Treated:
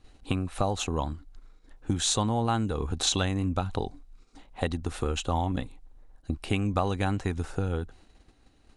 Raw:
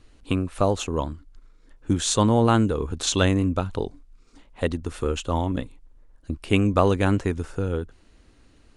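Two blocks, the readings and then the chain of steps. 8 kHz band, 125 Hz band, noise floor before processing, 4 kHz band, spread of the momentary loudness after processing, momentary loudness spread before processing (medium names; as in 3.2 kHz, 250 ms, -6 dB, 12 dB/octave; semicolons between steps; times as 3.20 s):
-2.5 dB, -4.5 dB, -56 dBFS, -1.5 dB, 11 LU, 15 LU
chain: gate -52 dBFS, range -7 dB; dynamic bell 430 Hz, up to -5 dB, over -31 dBFS, Q 0.83; compression 6:1, threshold -23 dBFS, peak gain reduction 8 dB; small resonant body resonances 770/3900 Hz, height 10 dB, ringing for 35 ms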